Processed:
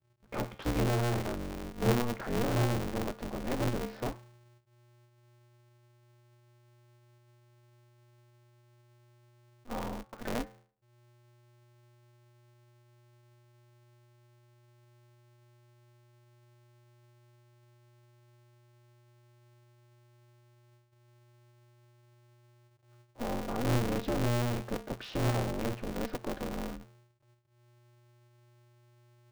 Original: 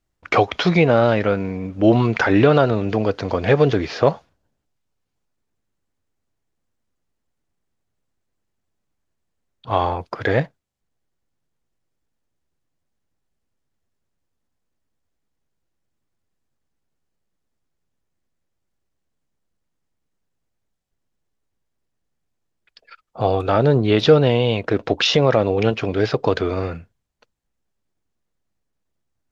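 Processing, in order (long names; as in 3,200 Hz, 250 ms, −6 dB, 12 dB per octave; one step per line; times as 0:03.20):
soft clipping −10.5 dBFS, distortion −13 dB
spectral tilt −3.5 dB per octave
tuned comb filter 330 Hz, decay 0.5 s, harmonics all, mix 80%
low-pass that shuts in the quiet parts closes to 400 Hz, open at −29.5 dBFS
ring modulator with a square carrier 120 Hz
level −8 dB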